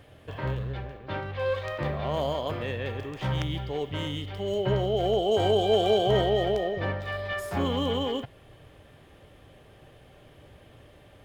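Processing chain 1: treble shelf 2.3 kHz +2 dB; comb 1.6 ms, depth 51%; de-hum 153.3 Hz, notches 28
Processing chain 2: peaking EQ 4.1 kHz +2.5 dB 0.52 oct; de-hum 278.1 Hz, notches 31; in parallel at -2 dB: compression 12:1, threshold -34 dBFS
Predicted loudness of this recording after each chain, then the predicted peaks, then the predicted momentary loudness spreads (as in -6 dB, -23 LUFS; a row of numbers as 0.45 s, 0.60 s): -26.5 LUFS, -26.5 LUFS; -10.0 dBFS, -10.0 dBFS; 12 LU, 10 LU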